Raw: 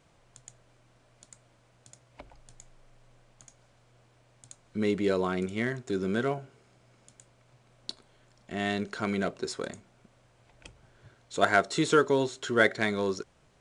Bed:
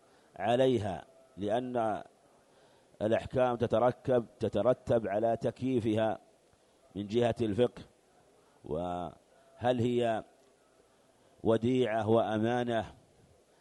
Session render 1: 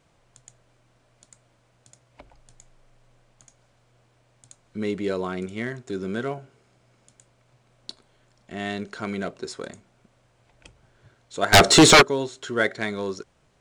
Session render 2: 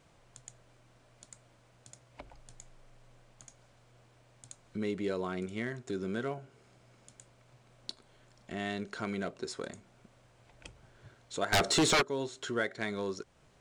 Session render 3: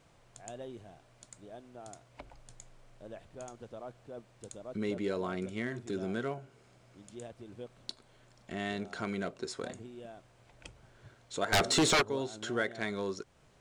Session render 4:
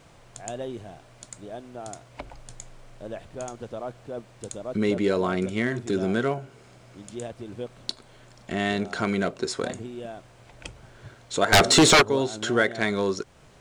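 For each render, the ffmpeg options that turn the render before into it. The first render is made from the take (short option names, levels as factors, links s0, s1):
-filter_complex "[0:a]asplit=3[s0][s1][s2];[s0]afade=t=out:st=11.52:d=0.02[s3];[s1]aeval=exprs='0.447*sin(PI/2*6.31*val(0)/0.447)':c=same,afade=t=in:st=11.52:d=0.02,afade=t=out:st=12.01:d=0.02[s4];[s2]afade=t=in:st=12.01:d=0.02[s5];[s3][s4][s5]amix=inputs=3:normalize=0"
-af "alimiter=limit=0.282:level=0:latency=1:release=253,acompressor=threshold=0.00708:ratio=1.5"
-filter_complex "[1:a]volume=0.126[s0];[0:a][s0]amix=inputs=2:normalize=0"
-af "volume=3.35"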